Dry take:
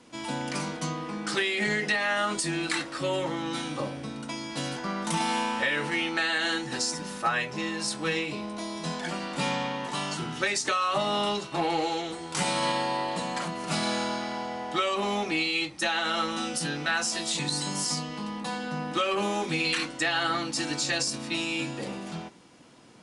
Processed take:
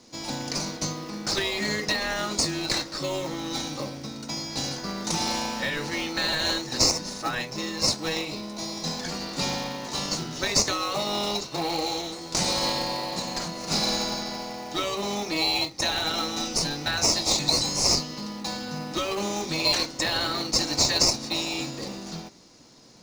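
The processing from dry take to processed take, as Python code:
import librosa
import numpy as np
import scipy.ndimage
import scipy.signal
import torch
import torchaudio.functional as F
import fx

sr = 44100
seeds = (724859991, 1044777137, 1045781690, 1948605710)

p1 = fx.band_shelf(x, sr, hz=5200.0, db=13.0, octaves=1.0)
p2 = fx.sample_hold(p1, sr, seeds[0], rate_hz=1600.0, jitter_pct=0)
p3 = p1 + (p2 * 10.0 ** (-6.5 / 20.0))
y = p3 * 10.0 ** (-3.5 / 20.0)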